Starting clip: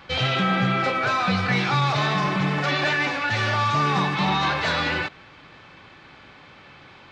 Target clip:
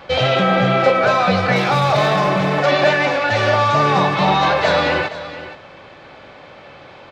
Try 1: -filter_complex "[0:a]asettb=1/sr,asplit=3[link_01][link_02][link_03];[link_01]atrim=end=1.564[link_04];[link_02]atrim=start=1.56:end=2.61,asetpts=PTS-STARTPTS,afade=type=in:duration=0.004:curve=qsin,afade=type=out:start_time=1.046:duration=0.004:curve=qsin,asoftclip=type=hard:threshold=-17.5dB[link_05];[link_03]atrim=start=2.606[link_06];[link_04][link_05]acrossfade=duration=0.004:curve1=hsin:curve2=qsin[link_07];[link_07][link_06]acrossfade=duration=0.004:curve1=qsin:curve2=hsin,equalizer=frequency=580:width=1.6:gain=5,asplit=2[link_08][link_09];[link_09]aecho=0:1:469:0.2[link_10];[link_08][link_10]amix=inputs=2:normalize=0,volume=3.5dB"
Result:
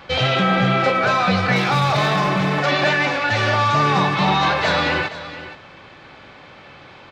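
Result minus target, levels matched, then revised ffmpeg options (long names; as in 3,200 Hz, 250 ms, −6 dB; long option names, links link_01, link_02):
500 Hz band −4.0 dB
-filter_complex "[0:a]asettb=1/sr,asplit=3[link_01][link_02][link_03];[link_01]atrim=end=1.564[link_04];[link_02]atrim=start=1.56:end=2.61,asetpts=PTS-STARTPTS,afade=type=in:duration=0.004:curve=qsin,afade=type=out:start_time=1.046:duration=0.004:curve=qsin,asoftclip=type=hard:threshold=-17.5dB[link_05];[link_03]atrim=start=2.606[link_06];[link_04][link_05]acrossfade=duration=0.004:curve1=hsin:curve2=qsin[link_07];[link_07][link_06]acrossfade=duration=0.004:curve1=qsin:curve2=hsin,equalizer=frequency=580:width=1.6:gain=12,asplit=2[link_08][link_09];[link_09]aecho=0:1:469:0.2[link_10];[link_08][link_10]amix=inputs=2:normalize=0,volume=3.5dB"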